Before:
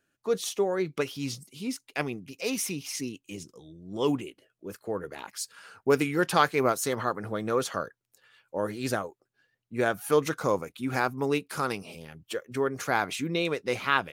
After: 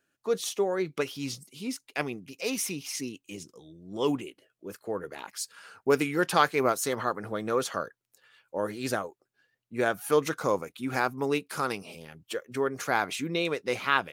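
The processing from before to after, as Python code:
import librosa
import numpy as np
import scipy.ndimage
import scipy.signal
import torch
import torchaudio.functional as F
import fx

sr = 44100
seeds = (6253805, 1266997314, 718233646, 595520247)

y = fx.low_shelf(x, sr, hz=130.0, db=-7.0)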